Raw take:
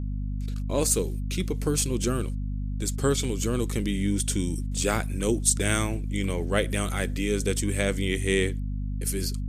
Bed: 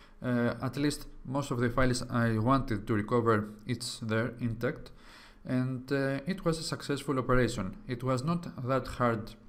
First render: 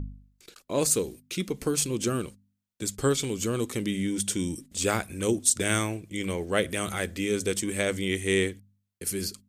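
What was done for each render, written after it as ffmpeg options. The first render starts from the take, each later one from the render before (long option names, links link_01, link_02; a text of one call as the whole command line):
ffmpeg -i in.wav -af "bandreject=frequency=50:width_type=h:width=4,bandreject=frequency=100:width_type=h:width=4,bandreject=frequency=150:width_type=h:width=4,bandreject=frequency=200:width_type=h:width=4,bandreject=frequency=250:width_type=h:width=4" out.wav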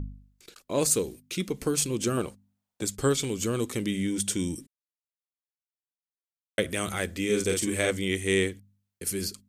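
ffmpeg -i in.wav -filter_complex "[0:a]asettb=1/sr,asplit=3[link_01][link_02][link_03];[link_01]atrim=end=2.174[link_04];[link_02]atrim=start=2.17:end=2.85,asetpts=PTS-STARTPTS,afade=type=in:duration=0.004:curve=qsin,afade=type=out:start_time=0.676:duration=0.004:curve=qsin,equalizer=frequency=760:width_type=o:width=1.3:gain=11[link_05];[link_03]atrim=start=2.846[link_06];[link_04][link_05]acrossfade=duration=0.004:curve1=hsin:curve2=qsin[link_07];[link_07][link_06]acrossfade=duration=0.004:curve1=qsin:curve2=hsin,asettb=1/sr,asplit=3[link_08][link_09][link_10];[link_08]atrim=end=7.254[link_11];[link_09]atrim=start=7.25:end=7.91,asetpts=PTS-STARTPTS,afade=type=in:duration=0.004:curve=qsin,afade=type=out:start_time=0.656:duration=0.004:curve=qsin,asplit=2[link_12][link_13];[link_13]adelay=43,volume=-4dB[link_14];[link_12][link_14]amix=inputs=2:normalize=0,atrim=end_sample=29106[link_15];[link_10]atrim=start=7.906[link_16];[link_11][link_15]acrossfade=duration=0.004:curve1=hsin:curve2=qsin[link_17];[link_17][link_16]acrossfade=duration=0.004:curve1=qsin:curve2=hsin,asplit=3[link_18][link_19][link_20];[link_18]atrim=end=4.67,asetpts=PTS-STARTPTS,afade=type=out:start_time=4.666:duration=0.004:curve=hsin[link_21];[link_19]atrim=start=4.67:end=6.58,asetpts=PTS-STARTPTS,volume=0[link_22];[link_20]atrim=start=6.58,asetpts=PTS-STARTPTS,afade=type=in:duration=0.004:curve=hsin[link_23];[link_21][link_22][link_23]concat=n=3:v=0:a=1" out.wav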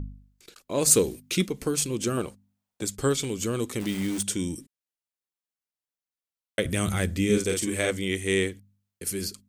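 ffmpeg -i in.wav -filter_complex "[0:a]asplit=3[link_01][link_02][link_03];[link_01]afade=type=out:start_time=0.86:duration=0.02[link_04];[link_02]acontrast=55,afade=type=in:start_time=0.86:duration=0.02,afade=type=out:start_time=1.45:duration=0.02[link_05];[link_03]afade=type=in:start_time=1.45:duration=0.02[link_06];[link_04][link_05][link_06]amix=inputs=3:normalize=0,asettb=1/sr,asplit=3[link_07][link_08][link_09];[link_07]atrim=end=3.804[link_10];[link_08]atrim=start=3.8:end=4.23,asetpts=PTS-STARTPTS,afade=type=in:duration=0.004:curve=qsin,afade=type=out:start_time=0.426:duration=0.004:curve=qsin,acrusher=bits=7:dc=4:mix=0:aa=0.000001[link_11];[link_09]atrim=start=4.226[link_12];[link_10][link_11]acrossfade=duration=0.004:curve1=hsin:curve2=qsin[link_13];[link_13][link_12]acrossfade=duration=0.004:curve1=qsin:curve2=hsin,asettb=1/sr,asplit=3[link_14][link_15][link_16];[link_14]atrim=end=6.654[link_17];[link_15]atrim=start=6.65:end=7.38,asetpts=PTS-STARTPTS,afade=type=in:duration=0.004:curve=qsin,afade=type=out:start_time=0.726:duration=0.004:curve=qsin,bass=frequency=250:gain=11,treble=frequency=4000:gain=2[link_18];[link_16]atrim=start=7.376[link_19];[link_17][link_18]acrossfade=duration=0.004:curve1=hsin:curve2=qsin[link_20];[link_20][link_19]acrossfade=duration=0.004:curve1=qsin:curve2=hsin" out.wav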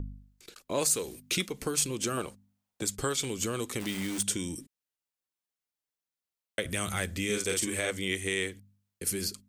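ffmpeg -i in.wav -filter_complex "[0:a]acrossover=split=590[link_01][link_02];[link_01]acompressor=threshold=-33dB:ratio=6[link_03];[link_03][link_02]amix=inputs=2:normalize=0,alimiter=limit=-15.5dB:level=0:latency=1:release=251" out.wav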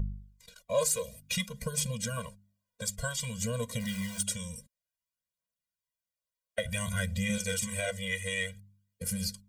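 ffmpeg -i in.wav -af "aphaser=in_gain=1:out_gain=1:delay=2.1:decay=0.47:speed=0.55:type=triangular,afftfilt=real='re*eq(mod(floor(b*sr/1024/230),2),0)':imag='im*eq(mod(floor(b*sr/1024/230),2),0)':win_size=1024:overlap=0.75" out.wav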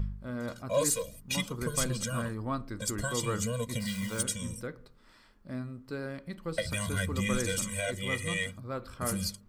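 ffmpeg -i in.wav -i bed.wav -filter_complex "[1:a]volume=-7.5dB[link_01];[0:a][link_01]amix=inputs=2:normalize=0" out.wav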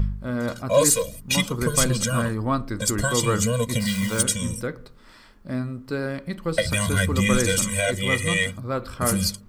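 ffmpeg -i in.wav -af "volume=10dB" out.wav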